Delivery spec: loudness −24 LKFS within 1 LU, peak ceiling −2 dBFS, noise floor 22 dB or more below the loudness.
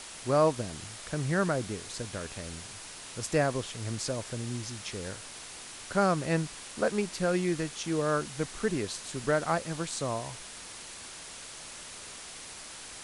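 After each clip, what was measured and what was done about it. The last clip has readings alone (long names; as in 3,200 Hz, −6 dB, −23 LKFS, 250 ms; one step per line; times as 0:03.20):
background noise floor −45 dBFS; target noise floor −55 dBFS; integrated loudness −32.5 LKFS; sample peak −12.0 dBFS; target loudness −24.0 LKFS
→ broadband denoise 10 dB, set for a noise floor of −45 dBFS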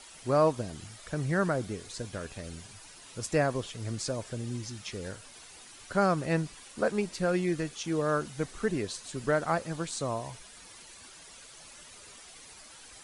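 background noise floor −51 dBFS; target noise floor −54 dBFS
→ broadband denoise 6 dB, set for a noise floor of −51 dBFS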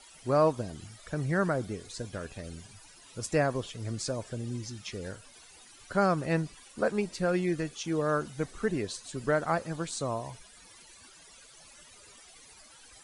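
background noise floor −55 dBFS; integrated loudness −31.5 LKFS; sample peak −12.5 dBFS; target loudness −24.0 LKFS
→ level +7.5 dB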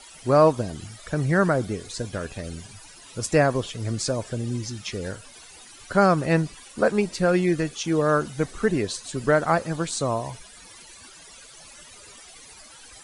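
integrated loudness −24.0 LKFS; sample peak −5.0 dBFS; background noise floor −47 dBFS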